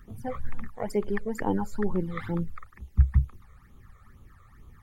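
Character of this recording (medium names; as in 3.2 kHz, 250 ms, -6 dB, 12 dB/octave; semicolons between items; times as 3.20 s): phasing stages 12, 2.2 Hz, lowest notch 270–1800 Hz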